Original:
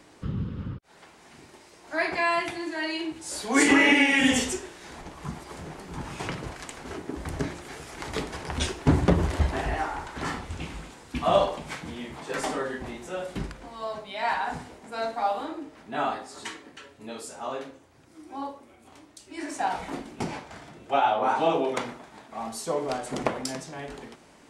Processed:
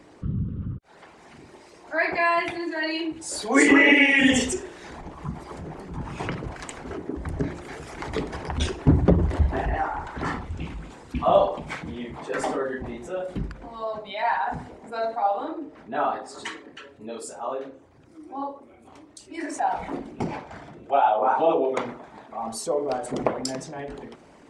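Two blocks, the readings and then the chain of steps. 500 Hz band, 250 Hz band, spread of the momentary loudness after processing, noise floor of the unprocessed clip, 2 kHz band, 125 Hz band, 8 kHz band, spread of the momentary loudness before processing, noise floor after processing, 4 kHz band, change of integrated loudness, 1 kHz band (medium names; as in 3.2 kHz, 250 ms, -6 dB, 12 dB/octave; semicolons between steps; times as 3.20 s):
+3.5 dB, +2.5 dB, 18 LU, -54 dBFS, +3.0 dB, +3.5 dB, 0.0 dB, 17 LU, -51 dBFS, 0.0 dB, +3.0 dB, +2.5 dB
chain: resonances exaggerated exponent 1.5; trim +3 dB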